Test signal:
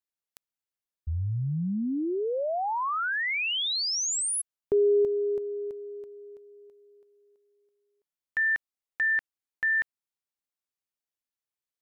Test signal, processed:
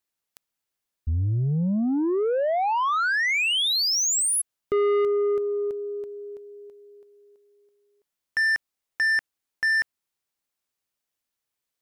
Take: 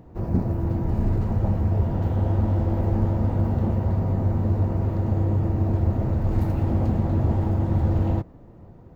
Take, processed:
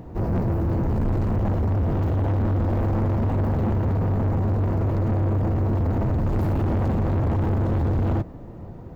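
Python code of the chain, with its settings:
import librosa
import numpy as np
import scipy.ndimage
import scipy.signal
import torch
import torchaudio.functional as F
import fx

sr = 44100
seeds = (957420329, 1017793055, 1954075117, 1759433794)

y = 10.0 ** (-27.5 / 20.0) * np.tanh(x / 10.0 ** (-27.5 / 20.0))
y = F.gain(torch.from_numpy(y), 8.0).numpy()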